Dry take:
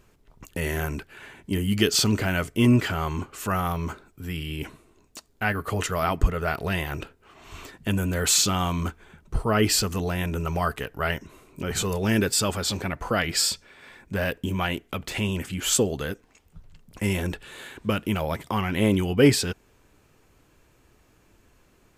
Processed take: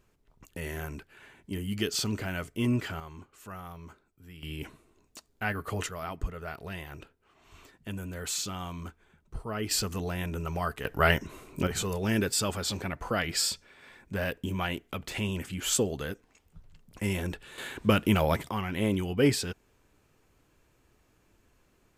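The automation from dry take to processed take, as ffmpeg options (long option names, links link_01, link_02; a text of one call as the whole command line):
ffmpeg -i in.wav -af "asetnsamples=nb_out_samples=441:pad=0,asendcmd='3 volume volume -17dB;4.43 volume volume -6dB;5.89 volume volume -12.5dB;9.71 volume volume -6dB;10.85 volume volume 3.5dB;11.67 volume volume -5dB;17.58 volume volume 2dB;18.49 volume volume -6.5dB',volume=-9dB" out.wav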